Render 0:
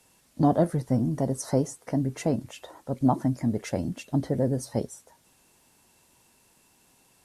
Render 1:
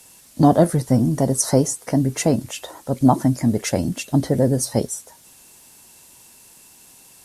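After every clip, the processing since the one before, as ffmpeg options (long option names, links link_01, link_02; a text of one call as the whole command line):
ffmpeg -i in.wav -af "highshelf=frequency=3900:gain=10,volume=7.5dB" out.wav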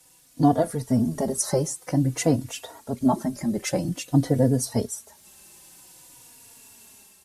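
ffmpeg -i in.wav -filter_complex "[0:a]dynaudnorm=framelen=140:gausssize=5:maxgain=6.5dB,asplit=2[link_01][link_02];[link_02]adelay=3.5,afreqshift=-0.51[link_03];[link_01][link_03]amix=inputs=2:normalize=1,volume=-5dB" out.wav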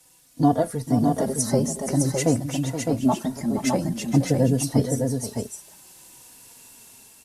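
ffmpeg -i in.wav -af "aecho=1:1:473|609:0.299|0.596" out.wav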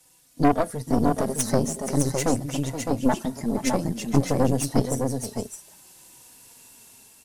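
ffmpeg -i in.wav -af "aeval=exprs='0.447*(cos(1*acos(clip(val(0)/0.447,-1,1)))-cos(1*PI/2))+0.112*(cos(4*acos(clip(val(0)/0.447,-1,1)))-cos(4*PI/2))':channel_layout=same,volume=-2dB" out.wav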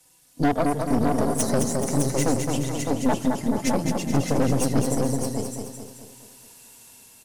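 ffmpeg -i in.wav -filter_complex "[0:a]asplit=2[link_01][link_02];[link_02]aecho=0:1:214|428|642|856|1070|1284:0.531|0.265|0.133|0.0664|0.0332|0.0166[link_03];[link_01][link_03]amix=inputs=2:normalize=0,asoftclip=type=hard:threshold=-12dB" out.wav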